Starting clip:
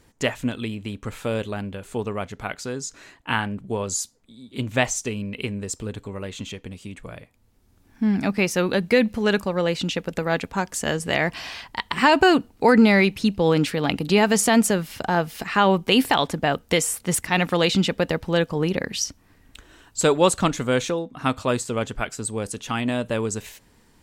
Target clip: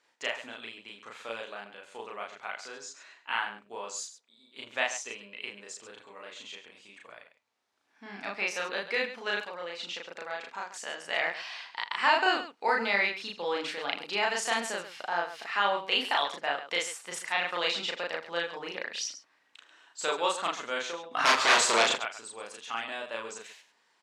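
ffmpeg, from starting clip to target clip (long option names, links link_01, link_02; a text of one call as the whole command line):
ffmpeg -i in.wav -filter_complex "[0:a]asplit=3[link_01][link_02][link_03];[link_01]afade=type=out:start_time=9.41:duration=0.02[link_04];[link_02]acompressor=threshold=-24dB:ratio=4,afade=type=in:start_time=9.41:duration=0.02,afade=type=out:start_time=11.01:duration=0.02[link_05];[link_03]afade=type=in:start_time=11.01:duration=0.02[link_06];[link_04][link_05][link_06]amix=inputs=3:normalize=0,asettb=1/sr,asplit=3[link_07][link_08][link_09];[link_07]atrim=end=21.114[link_10];[link_08]atrim=start=21.11:end=21.92,asetpts=PTS-STARTPTS,afade=type=in:duration=0.004:curve=qsin,afade=type=out:start_time=0.806:duration=0.004:curve=qsin,aeval=exprs='0.376*sin(PI/2*6.31*val(0)/0.376)':channel_layout=same[link_11];[link_09]atrim=start=21.916[link_12];[link_10][link_11]acrossfade=duration=0.004:curve1=hsin:curve2=qsin[link_13];[link_13][link_12]acrossfade=duration=0.004:curve1=qsin:curve2=hsin,highpass=770,lowpass=5300,aecho=1:1:34.99|78.72|137:1|0.251|0.282,volume=-8dB" out.wav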